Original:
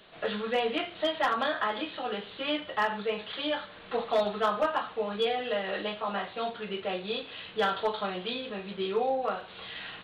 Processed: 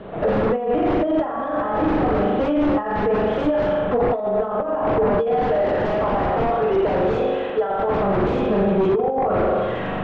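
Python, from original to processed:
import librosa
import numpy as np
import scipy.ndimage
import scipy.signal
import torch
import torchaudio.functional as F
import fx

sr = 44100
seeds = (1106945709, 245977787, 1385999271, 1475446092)

y = fx.highpass(x, sr, hz=410.0, slope=12, at=(5.3, 7.95))
y = fx.rev_spring(y, sr, rt60_s=1.3, pass_ms=(41,), chirp_ms=35, drr_db=-1.5)
y = fx.over_compress(y, sr, threshold_db=-30.0, ratio=-0.5)
y = fx.fold_sine(y, sr, drive_db=12, ceiling_db=-16.5)
y = scipy.signal.sosfilt(scipy.signal.bessel(2, 610.0, 'lowpass', norm='mag', fs=sr, output='sos'), y)
y = y * 10.0 ** (5.0 / 20.0)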